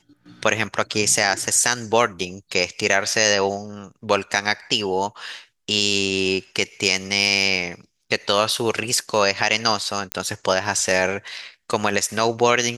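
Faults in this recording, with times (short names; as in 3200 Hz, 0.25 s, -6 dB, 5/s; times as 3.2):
10.12 pop -5 dBFS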